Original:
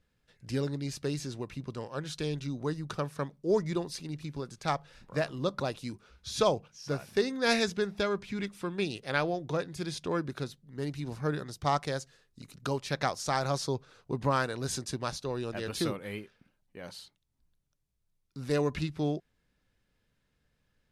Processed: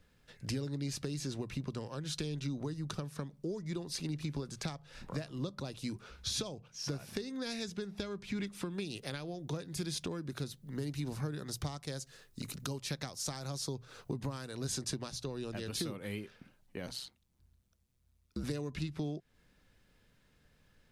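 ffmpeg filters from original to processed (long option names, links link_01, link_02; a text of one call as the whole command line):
ffmpeg -i in.wav -filter_complex "[0:a]asettb=1/sr,asplit=3[link_01][link_02][link_03];[link_01]atrim=end=8.704[link_04];[link_02]atrim=start=8.7:end=14.59,asetpts=PTS-STARTPTS,afade=type=in:duration=0.004:curve=qsin,afade=type=out:start_time=5.886:duration=0.004:curve=qsin,highshelf=frequency=11000:gain=10.5[link_05];[link_03]atrim=start=14.586[link_06];[link_04][link_05]acrossfade=duration=0.004:curve1=hsin:curve2=qsin[link_07];[link_07][link_06]acrossfade=duration=0.004:curve1=qsin:curve2=hsin,asettb=1/sr,asplit=3[link_08][link_09][link_10];[link_08]atrim=end=16.864[link_11];[link_09]atrim=start=16.86:end=18.44,asetpts=PTS-STARTPTS,afade=type=in:duration=0.004:curve=qsin,afade=type=out:start_time=1.576:duration=0.004:curve=qsin,aeval=exprs='val(0)*sin(2*PI*65*n/s)':channel_layout=same[link_12];[link_10]atrim=start=18.436[link_13];[link_11][link_12]acrossfade=duration=0.004:curve1=hsin:curve2=qsin[link_14];[link_14][link_13]acrossfade=duration=0.004:curve1=qsin:curve2=hsin,acompressor=threshold=-41dB:ratio=6,bandreject=frequency=60:width_type=h:width=6,bandreject=frequency=120:width_type=h:width=6,acrossover=split=330|3000[link_15][link_16][link_17];[link_16]acompressor=threshold=-52dB:ratio=6[link_18];[link_15][link_18][link_17]amix=inputs=3:normalize=0,volume=7.5dB" out.wav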